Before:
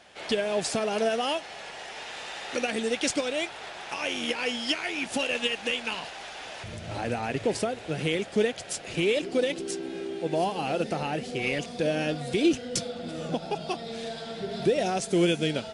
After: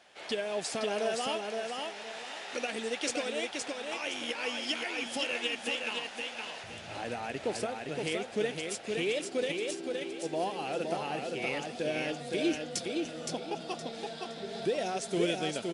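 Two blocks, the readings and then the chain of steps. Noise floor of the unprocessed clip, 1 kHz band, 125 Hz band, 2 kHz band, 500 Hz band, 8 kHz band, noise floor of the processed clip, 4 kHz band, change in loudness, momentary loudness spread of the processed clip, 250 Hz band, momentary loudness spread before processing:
-42 dBFS, -4.5 dB, -10.0 dB, -4.0 dB, -5.0 dB, -4.0 dB, -45 dBFS, -4.0 dB, -5.0 dB, 7 LU, -7.0 dB, 11 LU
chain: bass shelf 150 Hz -12 dB; on a send: feedback delay 517 ms, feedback 30%, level -4 dB; on the sum: trim -5.5 dB

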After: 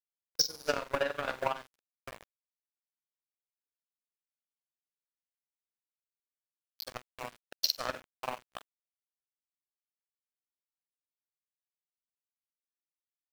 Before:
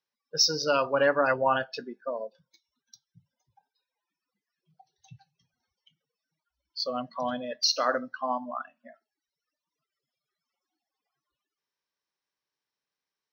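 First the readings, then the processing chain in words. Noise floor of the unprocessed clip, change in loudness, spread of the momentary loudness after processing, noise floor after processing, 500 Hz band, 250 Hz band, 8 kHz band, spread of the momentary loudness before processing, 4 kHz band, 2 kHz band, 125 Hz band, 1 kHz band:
under -85 dBFS, -6.5 dB, 20 LU, under -85 dBFS, -10.0 dB, -12.5 dB, -5.5 dB, 14 LU, -6.5 dB, -8.0 dB, -7.5 dB, -10.0 dB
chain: flutter echo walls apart 8 m, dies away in 0.56 s; small samples zeroed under -25 dBFS; power-law waveshaper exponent 2; compression 3:1, threshold -30 dBFS, peak gain reduction 7.5 dB; transient shaper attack +9 dB, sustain -3 dB; gate -53 dBFS, range -25 dB; trim -2.5 dB

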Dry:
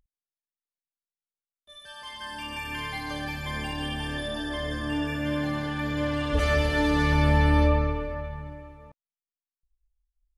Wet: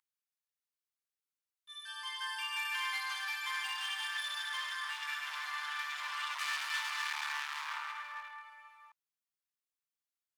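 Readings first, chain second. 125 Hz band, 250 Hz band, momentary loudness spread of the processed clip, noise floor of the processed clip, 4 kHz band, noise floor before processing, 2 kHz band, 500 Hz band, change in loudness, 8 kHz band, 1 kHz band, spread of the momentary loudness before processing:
under -40 dB, under -40 dB, 10 LU, under -85 dBFS, -2.0 dB, under -85 dBFS, -4.0 dB, under -35 dB, -9.5 dB, 0.0 dB, -8.0 dB, 16 LU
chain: overload inside the chain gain 29.5 dB; steep high-pass 960 Hz 48 dB/octave

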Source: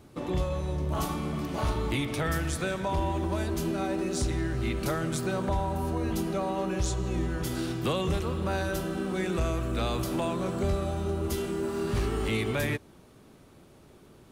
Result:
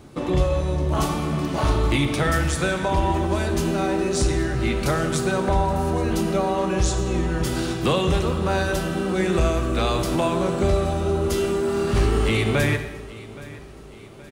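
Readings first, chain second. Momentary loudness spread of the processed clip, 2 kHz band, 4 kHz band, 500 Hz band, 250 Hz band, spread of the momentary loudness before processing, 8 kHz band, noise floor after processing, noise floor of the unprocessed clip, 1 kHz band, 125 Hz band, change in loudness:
4 LU, +8.5 dB, +8.0 dB, +8.5 dB, +7.0 dB, 2 LU, +7.5 dB, -41 dBFS, -55 dBFS, +8.5 dB, +7.5 dB, +8.0 dB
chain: peaking EQ 13 kHz -14 dB 0.22 oct; feedback delay 822 ms, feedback 49%, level -19 dB; gated-style reverb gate 340 ms falling, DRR 7.5 dB; trim +7.5 dB

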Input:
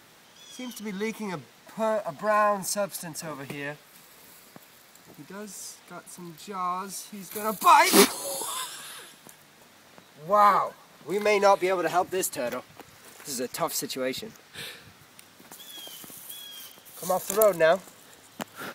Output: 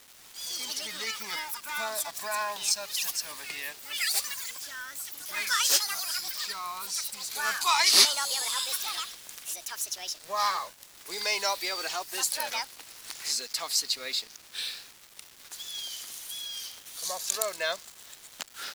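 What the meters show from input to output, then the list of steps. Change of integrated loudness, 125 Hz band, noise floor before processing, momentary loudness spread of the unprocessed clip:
-3.5 dB, under -20 dB, -55 dBFS, 22 LU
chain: band-pass filter 5.3 kHz, Q 0.74; in parallel at -1 dB: compression 12:1, threshold -45 dBFS, peak gain reduction 25.5 dB; on the sum: bit crusher 8-bit; ever faster or slower copies 87 ms, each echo +6 st, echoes 3; dynamic bell 4.7 kHz, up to +7 dB, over -51 dBFS, Q 2.2; trim +1.5 dB

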